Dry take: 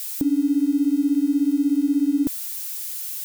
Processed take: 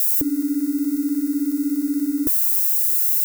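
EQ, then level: high shelf 11000 Hz +8.5 dB; fixed phaser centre 820 Hz, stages 6; +5.5 dB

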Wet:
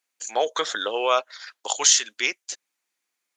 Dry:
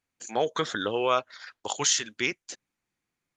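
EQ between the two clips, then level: HPF 440 Hz 12 dB/oct; dynamic EQ 630 Hz, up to +5 dB, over -38 dBFS, Q 1; high shelf 2700 Hz +9 dB; 0.0 dB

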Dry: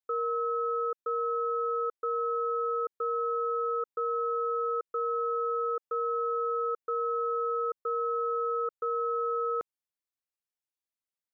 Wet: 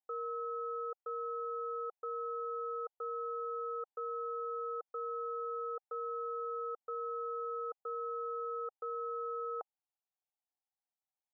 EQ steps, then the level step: band-pass 780 Hz, Q 6.6; +8.0 dB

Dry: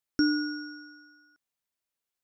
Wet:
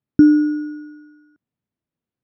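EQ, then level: air absorption 290 m; bell 110 Hz +14.5 dB 2.2 oct; bell 240 Hz +11 dB 2.3 oct; 0.0 dB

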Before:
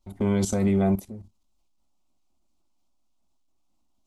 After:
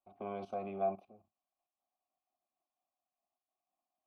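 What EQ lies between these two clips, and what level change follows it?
running mean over 6 samples; vowel filter a; +1.0 dB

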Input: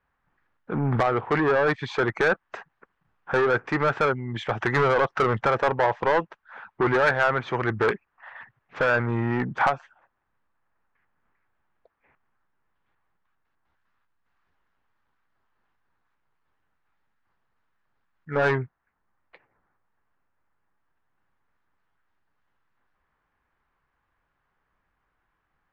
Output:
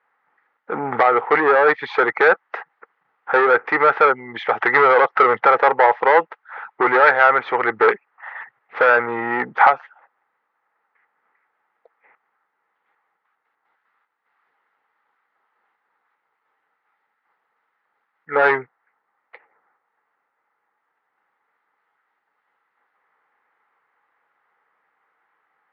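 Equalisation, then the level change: speaker cabinet 330–4500 Hz, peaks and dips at 470 Hz +8 dB, 830 Hz +9 dB, 1300 Hz +8 dB, 2000 Hz +10 dB; +2.0 dB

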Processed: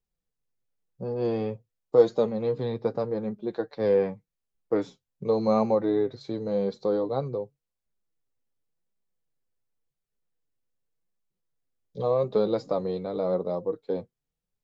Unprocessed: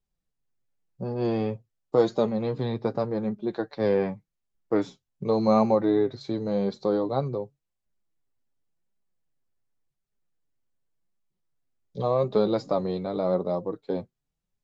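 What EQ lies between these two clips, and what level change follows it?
bell 480 Hz +8 dB 0.22 oct; -3.5 dB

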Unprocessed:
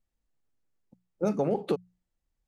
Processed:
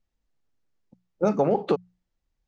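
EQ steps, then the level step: dynamic EQ 1000 Hz, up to +6 dB, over -42 dBFS, Q 0.79; LPF 6800 Hz 24 dB/oct; +3.0 dB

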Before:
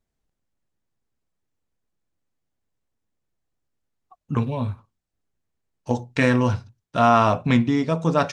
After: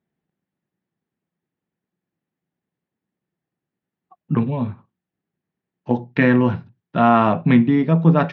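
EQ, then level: speaker cabinet 130–3400 Hz, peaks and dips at 170 Hz +5 dB, 360 Hz +6 dB, 800 Hz +3 dB, 1800 Hz +5 dB; bell 180 Hz +8 dB 1.3 oct; -1.0 dB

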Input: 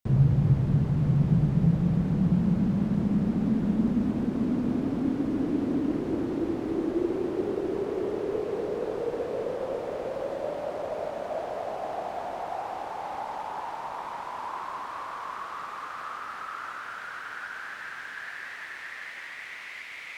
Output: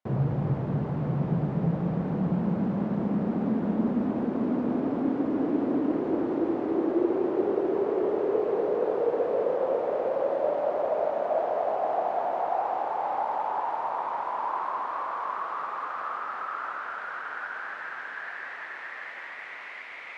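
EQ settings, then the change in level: band-pass 710 Hz, Q 0.8; +6.5 dB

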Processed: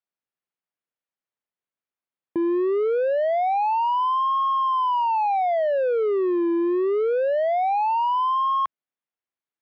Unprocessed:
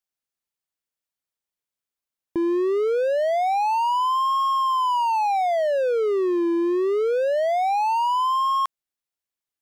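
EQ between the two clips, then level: BPF 130–2600 Hz; air absorption 58 m; 0.0 dB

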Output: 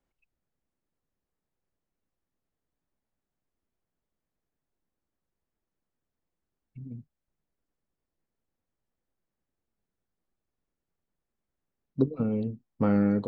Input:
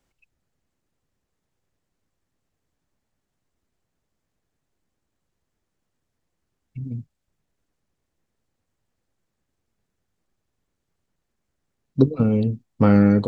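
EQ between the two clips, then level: bell 100 Hz -5.5 dB 0.95 oct; high shelf 3000 Hz -10.5 dB; -7.5 dB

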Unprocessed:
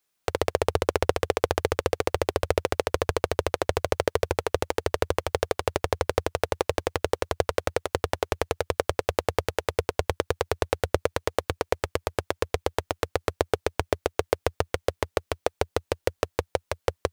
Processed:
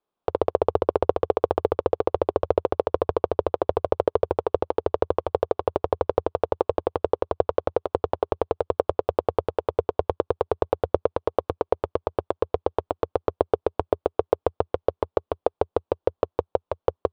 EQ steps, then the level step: EQ curve 120 Hz 0 dB, 410 Hz +7 dB, 1100 Hz +5 dB, 1900 Hz -12 dB, 3400 Hz -7 dB, 6500 Hz -23 dB; -3.0 dB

